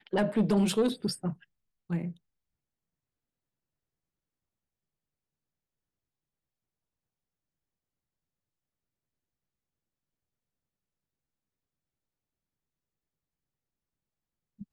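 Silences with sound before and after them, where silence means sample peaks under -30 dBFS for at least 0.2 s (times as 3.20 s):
1.30–1.90 s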